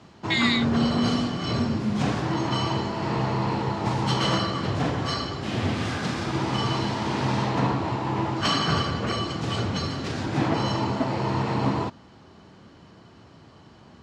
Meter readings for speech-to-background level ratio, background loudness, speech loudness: 0.5 dB, −26.0 LKFS, −25.5 LKFS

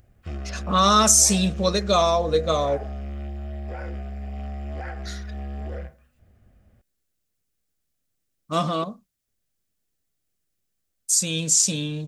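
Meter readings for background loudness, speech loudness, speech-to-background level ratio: −34.5 LKFS, −20.0 LKFS, 14.5 dB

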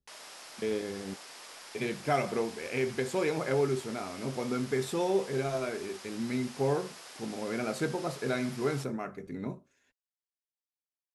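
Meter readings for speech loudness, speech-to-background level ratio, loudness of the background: −33.0 LKFS, 13.0 dB, −46.0 LKFS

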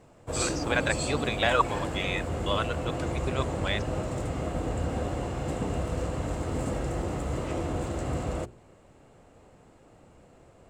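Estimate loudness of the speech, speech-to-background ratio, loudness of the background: −30.5 LKFS, 1.5 dB, −32.0 LKFS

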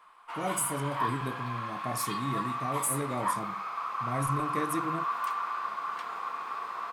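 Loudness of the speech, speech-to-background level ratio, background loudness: −36.0 LKFS, −3.0 dB, −33.0 LKFS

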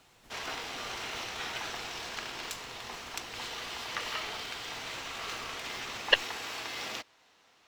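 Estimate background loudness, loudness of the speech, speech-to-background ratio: −37.5 LKFS, −27.5 LKFS, 10.0 dB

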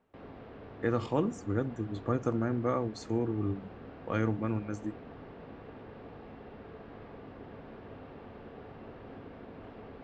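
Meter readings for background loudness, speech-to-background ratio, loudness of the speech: −48.5 LKFS, 15.5 dB, −33.0 LKFS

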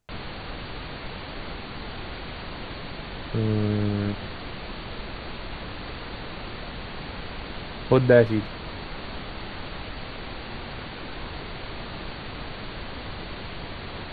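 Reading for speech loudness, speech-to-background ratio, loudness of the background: −23.0 LKFS, 13.5 dB, −36.5 LKFS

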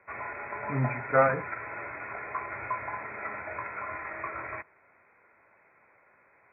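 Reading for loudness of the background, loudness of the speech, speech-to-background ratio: −36.5 LKFS, −27.5 LKFS, 9.0 dB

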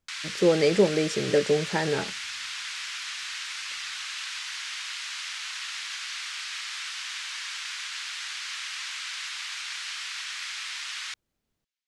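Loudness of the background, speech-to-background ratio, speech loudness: −33.0 LKFS, 8.5 dB, −24.5 LKFS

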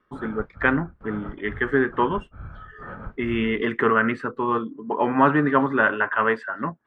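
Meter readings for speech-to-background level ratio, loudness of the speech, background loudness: 18.0 dB, −23.0 LKFS, −41.0 LKFS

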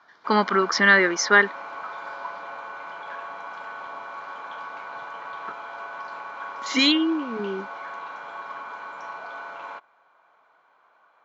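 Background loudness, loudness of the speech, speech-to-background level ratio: −36.5 LKFS, −20.0 LKFS, 16.5 dB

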